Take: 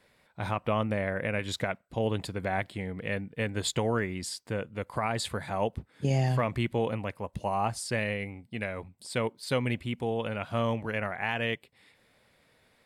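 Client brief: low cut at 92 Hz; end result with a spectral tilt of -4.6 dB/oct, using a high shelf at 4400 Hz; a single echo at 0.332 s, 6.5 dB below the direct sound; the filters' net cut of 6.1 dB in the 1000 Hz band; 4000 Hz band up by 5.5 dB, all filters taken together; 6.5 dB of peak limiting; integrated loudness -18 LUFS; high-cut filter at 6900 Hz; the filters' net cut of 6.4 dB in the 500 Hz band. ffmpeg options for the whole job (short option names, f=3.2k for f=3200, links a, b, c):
-af "highpass=92,lowpass=6.9k,equalizer=f=500:t=o:g=-6,equalizer=f=1k:t=o:g=-6.5,equalizer=f=4k:t=o:g=6,highshelf=f=4.4k:g=3.5,alimiter=limit=-21dB:level=0:latency=1,aecho=1:1:332:0.473,volume=16dB"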